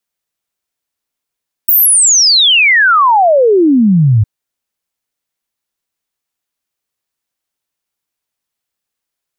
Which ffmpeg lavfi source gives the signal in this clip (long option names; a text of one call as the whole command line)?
ffmpeg -f lavfi -i "aevalsrc='0.562*clip(min(t,2.56-t)/0.01,0,1)*sin(2*PI*16000*2.56/log(100/16000)*(exp(log(100/16000)*t/2.56)-1))':duration=2.56:sample_rate=44100" out.wav